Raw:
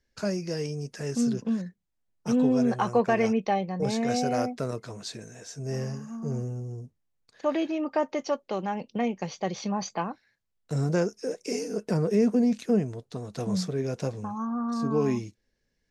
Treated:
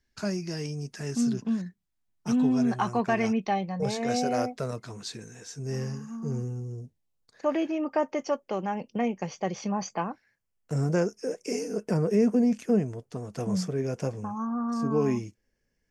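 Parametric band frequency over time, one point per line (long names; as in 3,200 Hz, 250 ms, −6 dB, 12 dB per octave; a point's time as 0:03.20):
parametric band −14.5 dB 0.27 octaves
0:03.60 510 Hz
0:04.25 120 Hz
0:04.96 620 Hz
0:06.63 620 Hz
0:07.49 3,900 Hz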